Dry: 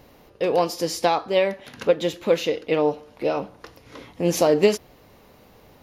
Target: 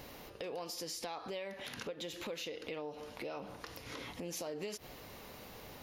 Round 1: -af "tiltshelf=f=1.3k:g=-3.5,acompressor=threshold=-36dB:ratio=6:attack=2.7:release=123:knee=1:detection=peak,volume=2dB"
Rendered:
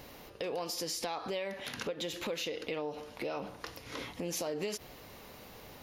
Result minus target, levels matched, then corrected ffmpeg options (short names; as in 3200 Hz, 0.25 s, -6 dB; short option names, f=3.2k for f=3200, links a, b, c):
compressor: peak gain reduction -5.5 dB
-af "tiltshelf=f=1.3k:g=-3.5,acompressor=threshold=-42.5dB:ratio=6:attack=2.7:release=123:knee=1:detection=peak,volume=2dB"